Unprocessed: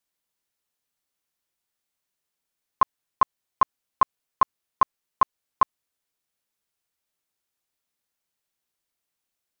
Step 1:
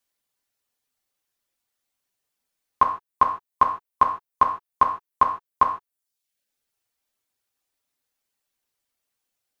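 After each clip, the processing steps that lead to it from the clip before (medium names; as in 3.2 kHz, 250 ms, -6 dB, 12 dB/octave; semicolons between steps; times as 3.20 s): reverb removal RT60 0.72 s; gated-style reverb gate 170 ms falling, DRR 3 dB; trim +2 dB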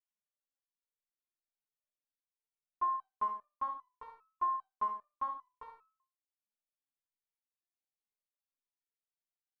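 treble shelf 2.1 kHz -9 dB; thinning echo 67 ms, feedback 20%, high-pass 220 Hz, level -8 dB; resonator arpeggio 5 Hz 210–1300 Hz; trim -4.5 dB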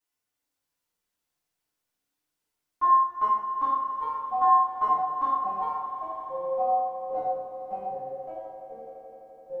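FDN reverb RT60 0.65 s, low-frequency decay 1×, high-frequency decay 0.65×, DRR -6.5 dB; ever faster or slower copies 335 ms, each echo -6 st, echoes 2, each echo -6 dB; on a send: echo with a slow build-up 85 ms, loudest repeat 5, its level -16 dB; on the sum: trim +4 dB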